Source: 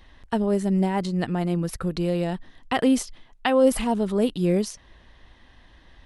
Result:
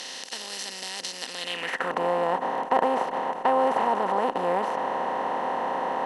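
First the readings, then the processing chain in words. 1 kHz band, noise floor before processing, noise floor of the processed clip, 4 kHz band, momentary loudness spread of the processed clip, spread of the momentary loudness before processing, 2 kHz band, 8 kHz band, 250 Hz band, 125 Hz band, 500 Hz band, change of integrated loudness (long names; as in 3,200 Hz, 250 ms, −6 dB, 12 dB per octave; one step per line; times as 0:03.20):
+8.0 dB, −54 dBFS, −39 dBFS, +3.0 dB, 9 LU, 9 LU, +3.0 dB, −2.0 dB, −13.0 dB, −18.5 dB, −2.0 dB, −2.5 dB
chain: compressor on every frequency bin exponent 0.2
band-pass filter sweep 4,900 Hz → 930 Hz, 0:01.32–0:02.02
level +1 dB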